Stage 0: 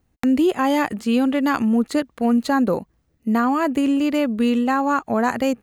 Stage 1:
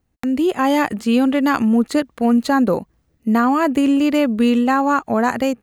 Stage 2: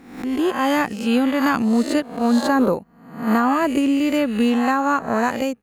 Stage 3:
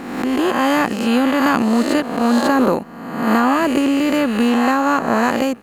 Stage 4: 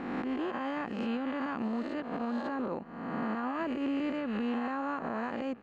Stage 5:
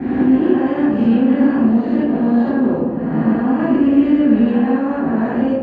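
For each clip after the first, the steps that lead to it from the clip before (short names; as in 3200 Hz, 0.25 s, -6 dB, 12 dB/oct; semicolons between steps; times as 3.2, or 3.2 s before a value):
AGC gain up to 8 dB; gain -3 dB
spectral swells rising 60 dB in 0.77 s; upward expander 1.5:1, over -27 dBFS; gain -2 dB
per-bin compression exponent 0.6
LPF 2800 Hz 12 dB/oct; compressor 3:1, threshold -23 dBFS, peak gain reduction 9.5 dB; limiter -17.5 dBFS, peak gain reduction 6.5 dB; gain -8 dB
reverb RT60 1.2 s, pre-delay 3 ms, DRR -9.5 dB; gain -11.5 dB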